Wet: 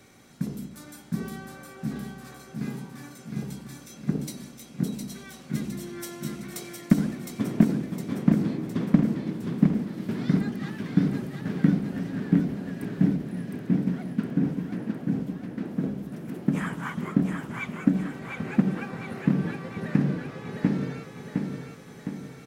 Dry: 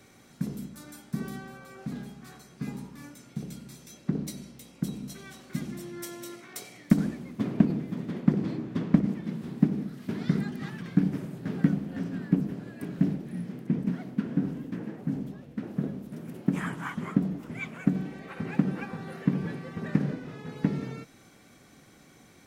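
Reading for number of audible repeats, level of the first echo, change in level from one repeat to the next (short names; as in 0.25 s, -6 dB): 5, -4.5 dB, -5.5 dB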